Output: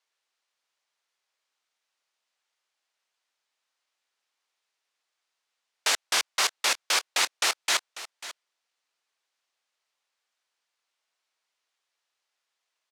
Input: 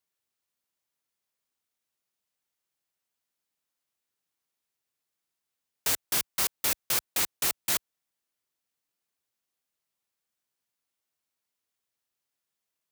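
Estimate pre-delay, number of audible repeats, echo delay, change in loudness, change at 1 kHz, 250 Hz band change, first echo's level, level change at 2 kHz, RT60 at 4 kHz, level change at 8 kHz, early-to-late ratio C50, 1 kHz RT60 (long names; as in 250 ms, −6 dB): no reverb audible, 1, 543 ms, +2.0 dB, +8.0 dB, −4.5 dB, −15.0 dB, +8.5 dB, no reverb audible, +1.5 dB, no reverb audible, no reverb audible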